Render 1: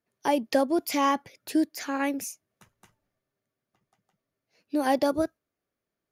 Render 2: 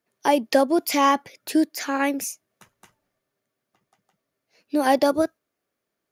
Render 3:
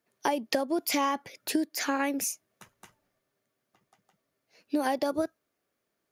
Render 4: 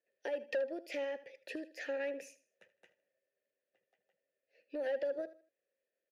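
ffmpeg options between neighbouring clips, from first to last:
-af "lowshelf=f=140:g=-10.5,volume=6dB"
-af "acompressor=threshold=-24dB:ratio=12"
-filter_complex "[0:a]asplit=3[a][b][c];[a]bandpass=f=530:t=q:w=8,volume=0dB[d];[b]bandpass=f=1.84k:t=q:w=8,volume=-6dB[e];[c]bandpass=f=2.48k:t=q:w=8,volume=-9dB[f];[d][e][f]amix=inputs=3:normalize=0,aecho=1:1:78|156|234:0.15|0.0464|0.0144,asoftclip=type=tanh:threshold=-31dB,volume=2dB"

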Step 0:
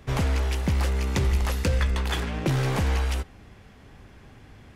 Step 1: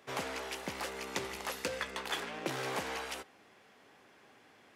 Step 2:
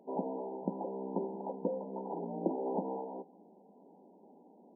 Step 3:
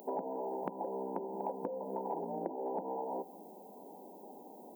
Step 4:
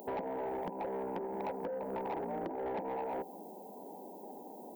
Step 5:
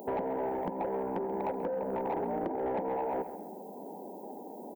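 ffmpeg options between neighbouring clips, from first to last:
-af "highpass=390,volume=-5.5dB"
-af "aemphasis=mode=reproduction:type=riaa,afftfilt=real='re*between(b*sr/4096,170,1000)':imag='im*between(b*sr/4096,170,1000)':win_size=4096:overlap=0.75,volume=1.5dB"
-af "acompressor=threshold=-42dB:ratio=16,aemphasis=mode=production:type=riaa,volume=11dB"
-af "asoftclip=type=tanh:threshold=-35.5dB,volume=3.5dB"
-filter_complex "[0:a]asplit=2[a][b];[b]adynamicsmooth=sensitivity=2:basefreq=1.3k,volume=-1dB[c];[a][c]amix=inputs=2:normalize=0,asplit=2[d][e];[e]adelay=134,lowpass=f=4.2k:p=1,volume=-12.5dB,asplit=2[f][g];[g]adelay=134,lowpass=f=4.2k:p=1,volume=0.38,asplit=2[h][i];[i]adelay=134,lowpass=f=4.2k:p=1,volume=0.38,asplit=2[j][k];[k]adelay=134,lowpass=f=4.2k:p=1,volume=0.38[l];[d][f][h][j][l]amix=inputs=5:normalize=0"

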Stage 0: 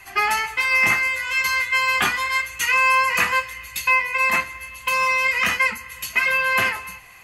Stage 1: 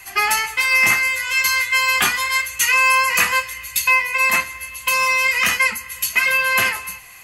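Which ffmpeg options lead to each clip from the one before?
-af "highshelf=f=4.1k:g=11.5"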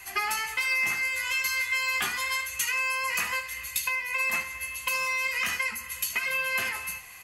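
-filter_complex "[0:a]acompressor=threshold=-21dB:ratio=6,asplit=2[a][b];[b]aecho=0:1:13|76:0.299|0.211[c];[a][c]amix=inputs=2:normalize=0,volume=-5dB"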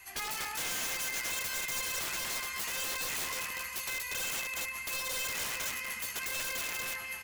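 -af "aecho=1:1:240|420|555|656.2|732.2:0.631|0.398|0.251|0.158|0.1,acrusher=bits=8:mode=log:mix=0:aa=0.000001,aeval=exprs='(mod(13.3*val(0)+1,2)-1)/13.3':c=same,volume=-7.5dB"

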